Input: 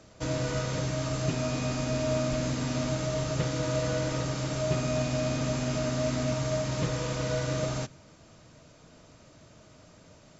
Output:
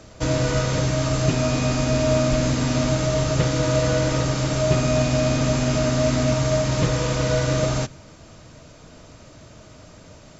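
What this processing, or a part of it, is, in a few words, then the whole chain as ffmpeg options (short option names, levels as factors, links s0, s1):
low shelf boost with a cut just above: -af "lowshelf=f=85:g=6,equalizer=f=160:t=o:w=0.77:g=-2,volume=2.66"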